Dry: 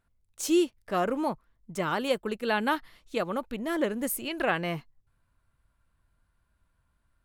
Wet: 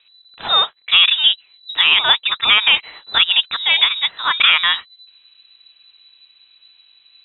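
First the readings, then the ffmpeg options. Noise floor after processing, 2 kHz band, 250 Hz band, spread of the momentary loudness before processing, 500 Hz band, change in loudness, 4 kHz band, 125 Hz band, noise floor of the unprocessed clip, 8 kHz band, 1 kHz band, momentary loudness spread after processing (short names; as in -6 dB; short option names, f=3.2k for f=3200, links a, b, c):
-55 dBFS, +17.0 dB, under -15 dB, 9 LU, -7.5 dB, +16.0 dB, +29.0 dB, n/a, -74 dBFS, under -40 dB, +8.5 dB, 8 LU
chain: -filter_complex "[0:a]acrossover=split=530[a][b];[a]acompressor=threshold=-49dB:ratio=4[c];[c][b]amix=inputs=2:normalize=0,lowpass=f=3.4k:t=q:w=0.5098,lowpass=f=3.4k:t=q:w=0.6013,lowpass=f=3.4k:t=q:w=0.9,lowpass=f=3.4k:t=q:w=2.563,afreqshift=-4000,alimiter=level_in=20.5dB:limit=-1dB:release=50:level=0:latency=1,volume=-1dB"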